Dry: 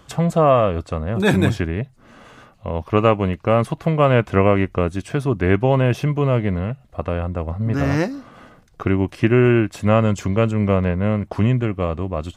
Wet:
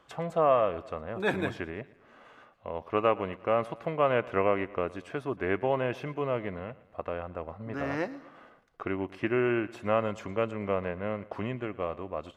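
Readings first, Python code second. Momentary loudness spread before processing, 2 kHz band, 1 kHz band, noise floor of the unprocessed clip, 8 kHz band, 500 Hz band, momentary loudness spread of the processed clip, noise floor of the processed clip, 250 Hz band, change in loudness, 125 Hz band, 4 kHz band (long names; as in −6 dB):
10 LU, −8.5 dB, −8.0 dB, −51 dBFS, can't be measured, −9.0 dB, 13 LU, −60 dBFS, −14.5 dB, −11.5 dB, −20.5 dB, −11.5 dB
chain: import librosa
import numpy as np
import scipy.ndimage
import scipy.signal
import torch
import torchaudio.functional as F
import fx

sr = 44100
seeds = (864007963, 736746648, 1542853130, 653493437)

p1 = fx.bass_treble(x, sr, bass_db=-14, treble_db=-12)
p2 = p1 + fx.echo_feedback(p1, sr, ms=115, feedback_pct=51, wet_db=-20.0, dry=0)
y = F.gain(torch.from_numpy(p2), -8.0).numpy()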